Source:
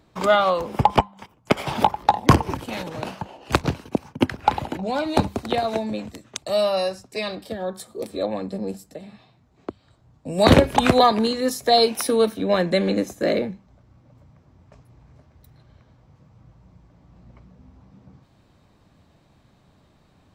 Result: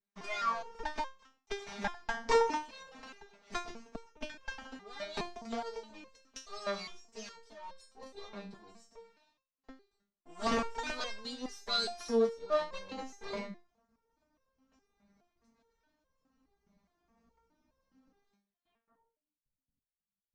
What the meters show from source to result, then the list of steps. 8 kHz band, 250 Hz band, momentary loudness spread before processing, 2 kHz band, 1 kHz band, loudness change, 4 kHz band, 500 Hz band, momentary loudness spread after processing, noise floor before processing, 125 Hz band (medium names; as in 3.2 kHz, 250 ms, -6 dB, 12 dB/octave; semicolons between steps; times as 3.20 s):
-14.0 dB, -19.5 dB, 17 LU, -12.0 dB, -16.0 dB, -14.5 dB, -13.5 dB, -15.0 dB, 20 LU, -59 dBFS, -29.5 dB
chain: comb filter that takes the minimum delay 4.5 ms; gate with hold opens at -49 dBFS; time-frequency box 2.30–2.57 s, 220–9200 Hz +11 dB; peaking EQ 1.2 kHz +4.5 dB 2.8 oct; de-hum 376.9 Hz, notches 33; low-pass sweep 6 kHz -> 120 Hz, 18.54–19.50 s; resonator arpeggio 4.8 Hz 200–530 Hz; trim -5 dB